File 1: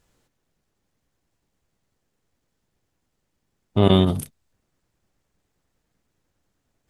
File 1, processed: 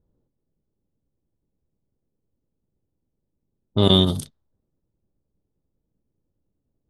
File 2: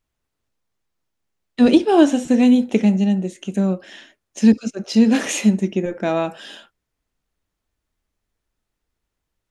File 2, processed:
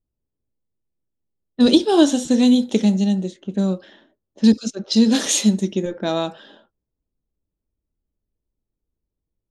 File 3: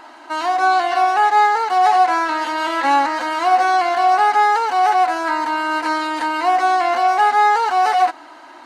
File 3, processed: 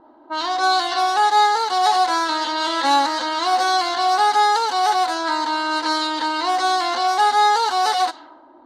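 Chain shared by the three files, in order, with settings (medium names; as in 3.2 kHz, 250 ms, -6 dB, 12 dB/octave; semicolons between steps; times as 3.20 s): resonant high shelf 3 kHz +6 dB, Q 3; band-stop 710 Hz, Q 12; level-controlled noise filter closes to 460 Hz, open at -15 dBFS; trim -1 dB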